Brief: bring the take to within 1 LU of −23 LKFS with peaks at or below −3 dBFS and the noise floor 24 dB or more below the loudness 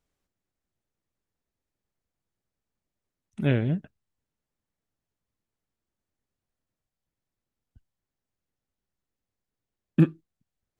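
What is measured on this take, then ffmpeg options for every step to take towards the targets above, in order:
integrated loudness −26.5 LKFS; sample peak −7.5 dBFS; target loudness −23.0 LKFS
→ -af "volume=3.5dB"

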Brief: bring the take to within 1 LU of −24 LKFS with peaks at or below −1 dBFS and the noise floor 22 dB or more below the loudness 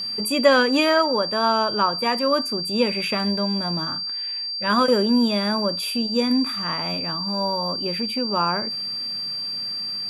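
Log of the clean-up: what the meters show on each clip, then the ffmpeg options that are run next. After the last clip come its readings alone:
interfering tone 4,700 Hz; level of the tone −26 dBFS; integrated loudness −21.5 LKFS; sample peak −4.0 dBFS; target loudness −24.0 LKFS
→ -af "bandreject=frequency=4700:width=30"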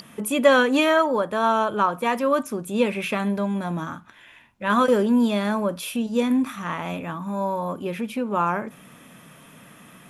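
interfering tone none found; integrated loudness −23.0 LKFS; sample peak −4.5 dBFS; target loudness −24.0 LKFS
→ -af "volume=-1dB"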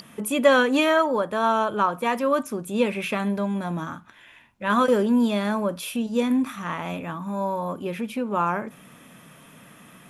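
integrated loudness −24.0 LKFS; sample peak −5.5 dBFS; background noise floor −50 dBFS

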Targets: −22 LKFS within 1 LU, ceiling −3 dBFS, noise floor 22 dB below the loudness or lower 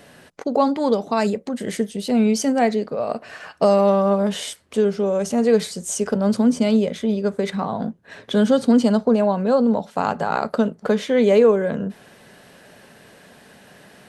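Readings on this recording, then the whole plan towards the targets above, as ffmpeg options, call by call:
integrated loudness −20.0 LKFS; sample peak −4.5 dBFS; target loudness −22.0 LKFS
→ -af "volume=-2dB"

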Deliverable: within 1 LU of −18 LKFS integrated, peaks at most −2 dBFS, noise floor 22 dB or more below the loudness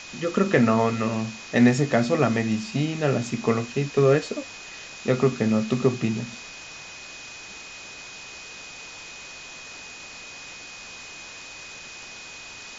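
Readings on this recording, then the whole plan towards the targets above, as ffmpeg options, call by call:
interfering tone 2,500 Hz; level of the tone −42 dBFS; background noise floor −41 dBFS; target noise floor −46 dBFS; integrated loudness −23.5 LKFS; sample peak −5.5 dBFS; target loudness −18.0 LKFS
→ -af "bandreject=frequency=2500:width=30"
-af "afftdn=noise_reduction=6:noise_floor=-41"
-af "volume=5.5dB,alimiter=limit=-2dB:level=0:latency=1"

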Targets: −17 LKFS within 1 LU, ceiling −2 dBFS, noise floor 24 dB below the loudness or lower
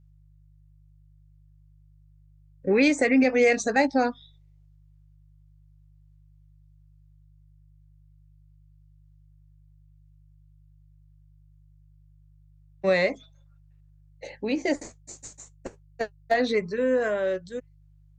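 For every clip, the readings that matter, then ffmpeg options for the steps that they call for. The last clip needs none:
mains hum 50 Hz; hum harmonics up to 150 Hz; level of the hum −54 dBFS; integrated loudness −24.5 LKFS; sample peak −10.5 dBFS; target loudness −17.0 LKFS
→ -af "bandreject=frequency=50:width_type=h:width=4,bandreject=frequency=100:width_type=h:width=4,bandreject=frequency=150:width_type=h:width=4"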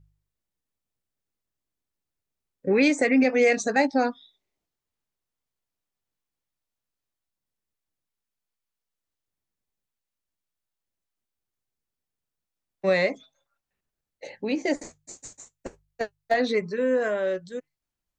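mains hum none found; integrated loudness −24.5 LKFS; sample peak −10.0 dBFS; target loudness −17.0 LKFS
→ -af "volume=7.5dB"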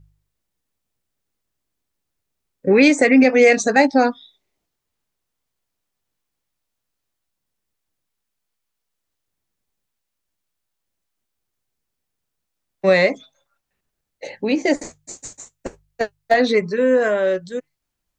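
integrated loudness −17.0 LKFS; sample peak −2.5 dBFS; background noise floor −79 dBFS

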